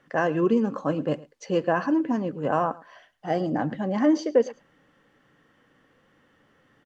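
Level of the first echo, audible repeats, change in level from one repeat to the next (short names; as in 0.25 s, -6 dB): -20.5 dB, 1, no steady repeat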